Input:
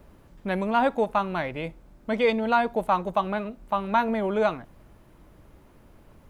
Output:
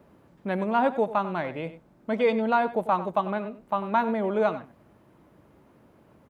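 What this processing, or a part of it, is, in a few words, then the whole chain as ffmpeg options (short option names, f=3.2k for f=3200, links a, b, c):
behind a face mask: -af "highpass=130,highshelf=f=2.3k:g=-8,aecho=1:1:95:0.2"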